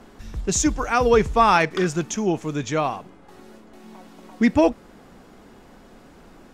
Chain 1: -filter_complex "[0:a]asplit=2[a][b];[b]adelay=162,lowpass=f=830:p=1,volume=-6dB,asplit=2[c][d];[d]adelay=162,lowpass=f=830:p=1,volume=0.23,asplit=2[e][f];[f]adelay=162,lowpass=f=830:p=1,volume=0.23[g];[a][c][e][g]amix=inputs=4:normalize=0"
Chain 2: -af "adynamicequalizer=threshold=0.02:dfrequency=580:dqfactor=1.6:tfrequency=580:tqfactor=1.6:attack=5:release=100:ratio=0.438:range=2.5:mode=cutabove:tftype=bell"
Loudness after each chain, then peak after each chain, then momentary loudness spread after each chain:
-20.5, -21.5 LUFS; -4.0, -6.5 dBFS; 15, 9 LU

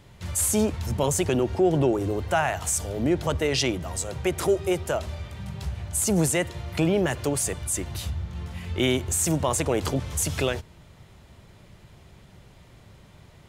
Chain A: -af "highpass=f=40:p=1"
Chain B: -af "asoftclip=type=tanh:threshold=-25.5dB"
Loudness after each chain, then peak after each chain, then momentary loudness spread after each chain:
-25.5, -30.5 LUFS; -10.5, -25.5 dBFS; 11, 7 LU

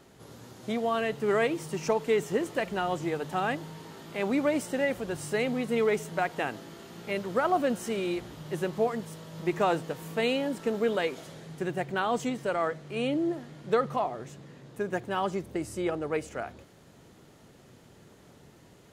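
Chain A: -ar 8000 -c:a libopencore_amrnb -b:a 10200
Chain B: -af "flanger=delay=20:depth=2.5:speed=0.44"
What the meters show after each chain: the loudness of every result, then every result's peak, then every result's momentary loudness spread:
-30.5, -33.0 LUFS; -13.5, -16.5 dBFS; 12, 12 LU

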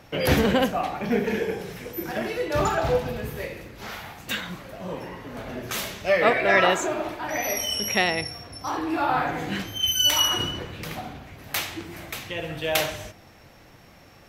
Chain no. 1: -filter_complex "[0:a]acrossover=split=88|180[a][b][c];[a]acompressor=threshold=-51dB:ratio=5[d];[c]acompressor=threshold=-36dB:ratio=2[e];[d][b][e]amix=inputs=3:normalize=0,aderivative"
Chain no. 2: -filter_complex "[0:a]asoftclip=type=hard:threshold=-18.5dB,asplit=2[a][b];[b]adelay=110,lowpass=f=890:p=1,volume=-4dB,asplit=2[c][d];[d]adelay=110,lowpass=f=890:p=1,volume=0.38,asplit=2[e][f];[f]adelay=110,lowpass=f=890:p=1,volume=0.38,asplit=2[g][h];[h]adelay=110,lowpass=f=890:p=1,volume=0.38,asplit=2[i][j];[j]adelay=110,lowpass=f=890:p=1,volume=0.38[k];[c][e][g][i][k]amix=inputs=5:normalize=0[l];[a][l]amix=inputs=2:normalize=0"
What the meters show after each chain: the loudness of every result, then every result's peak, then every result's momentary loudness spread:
-40.0, -26.0 LUFS; -14.0, -13.5 dBFS; 18, 14 LU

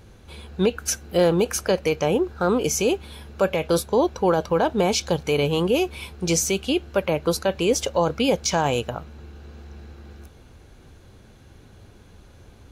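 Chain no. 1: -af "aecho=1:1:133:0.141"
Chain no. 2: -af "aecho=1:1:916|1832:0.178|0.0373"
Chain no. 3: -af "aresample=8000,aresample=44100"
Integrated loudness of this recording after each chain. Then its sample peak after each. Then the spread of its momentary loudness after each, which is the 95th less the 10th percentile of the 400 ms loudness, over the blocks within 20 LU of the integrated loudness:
-22.5, -22.5, -23.0 LUFS; -8.5, -8.5, -8.5 dBFS; 5, 15, 9 LU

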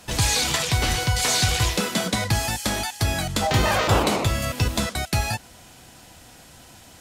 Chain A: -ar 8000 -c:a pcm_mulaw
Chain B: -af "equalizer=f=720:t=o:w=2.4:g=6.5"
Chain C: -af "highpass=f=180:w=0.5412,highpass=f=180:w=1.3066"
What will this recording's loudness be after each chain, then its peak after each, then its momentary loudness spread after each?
-24.0, -20.0, -23.5 LUFS; -7.5, -3.5, -8.0 dBFS; 6, 6, 7 LU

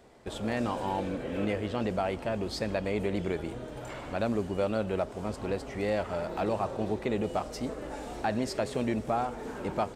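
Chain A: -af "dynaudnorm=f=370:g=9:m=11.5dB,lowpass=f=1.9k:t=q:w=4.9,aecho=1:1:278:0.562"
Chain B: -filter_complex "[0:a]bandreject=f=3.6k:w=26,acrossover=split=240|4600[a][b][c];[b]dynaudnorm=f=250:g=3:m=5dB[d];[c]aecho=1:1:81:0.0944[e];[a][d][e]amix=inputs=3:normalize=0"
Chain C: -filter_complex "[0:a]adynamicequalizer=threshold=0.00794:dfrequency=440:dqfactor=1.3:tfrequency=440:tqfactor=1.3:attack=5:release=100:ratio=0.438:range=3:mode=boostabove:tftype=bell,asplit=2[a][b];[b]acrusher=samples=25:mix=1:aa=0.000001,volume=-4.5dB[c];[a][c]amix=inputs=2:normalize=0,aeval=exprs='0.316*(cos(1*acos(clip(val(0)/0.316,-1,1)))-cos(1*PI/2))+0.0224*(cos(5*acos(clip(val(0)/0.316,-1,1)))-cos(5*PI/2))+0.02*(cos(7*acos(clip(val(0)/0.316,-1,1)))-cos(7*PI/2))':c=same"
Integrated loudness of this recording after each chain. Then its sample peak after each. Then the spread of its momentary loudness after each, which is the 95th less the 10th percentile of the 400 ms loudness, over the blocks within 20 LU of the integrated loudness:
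-19.5, -28.5, -25.5 LUFS; -1.5, -12.0, -10.0 dBFS; 10, 7, 8 LU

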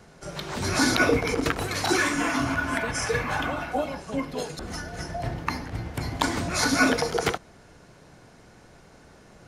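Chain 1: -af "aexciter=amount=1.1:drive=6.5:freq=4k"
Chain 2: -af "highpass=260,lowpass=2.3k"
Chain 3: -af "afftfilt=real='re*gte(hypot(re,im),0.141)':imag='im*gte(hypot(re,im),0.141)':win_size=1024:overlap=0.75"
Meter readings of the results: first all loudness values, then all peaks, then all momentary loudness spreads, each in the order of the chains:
-25.5, -28.5, -28.5 LUFS; -4.0, -7.0, -7.5 dBFS; 13, 15, 14 LU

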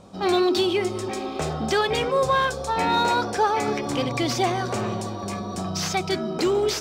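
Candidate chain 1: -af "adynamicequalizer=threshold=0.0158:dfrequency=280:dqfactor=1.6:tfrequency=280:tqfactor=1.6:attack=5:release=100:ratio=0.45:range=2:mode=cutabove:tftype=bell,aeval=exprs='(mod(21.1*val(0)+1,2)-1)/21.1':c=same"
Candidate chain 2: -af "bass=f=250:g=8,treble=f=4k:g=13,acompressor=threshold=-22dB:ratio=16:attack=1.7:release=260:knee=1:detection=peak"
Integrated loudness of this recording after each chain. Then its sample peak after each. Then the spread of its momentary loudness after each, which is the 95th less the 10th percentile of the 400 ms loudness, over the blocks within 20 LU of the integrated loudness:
-29.5, -27.5 LUFS; -26.5, -15.0 dBFS; 2, 2 LU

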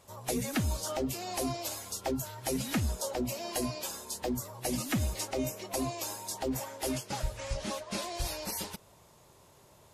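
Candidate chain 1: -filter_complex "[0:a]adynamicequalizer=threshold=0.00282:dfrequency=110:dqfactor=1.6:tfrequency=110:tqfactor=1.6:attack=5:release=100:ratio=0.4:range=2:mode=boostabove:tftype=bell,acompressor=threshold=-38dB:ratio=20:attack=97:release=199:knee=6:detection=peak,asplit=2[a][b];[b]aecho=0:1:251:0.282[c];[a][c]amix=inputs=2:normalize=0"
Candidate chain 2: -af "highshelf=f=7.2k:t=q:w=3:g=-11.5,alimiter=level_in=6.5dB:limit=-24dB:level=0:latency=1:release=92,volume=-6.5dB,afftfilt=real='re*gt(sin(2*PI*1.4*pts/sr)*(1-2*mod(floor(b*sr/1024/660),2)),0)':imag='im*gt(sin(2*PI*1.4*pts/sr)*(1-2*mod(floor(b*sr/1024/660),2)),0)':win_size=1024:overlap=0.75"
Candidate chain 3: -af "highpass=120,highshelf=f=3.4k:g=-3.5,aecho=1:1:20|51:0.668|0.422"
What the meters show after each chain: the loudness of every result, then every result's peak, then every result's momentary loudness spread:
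-38.0, -42.5, -34.0 LUFS; -22.5, -30.0, -17.5 dBFS; 2, 7, 6 LU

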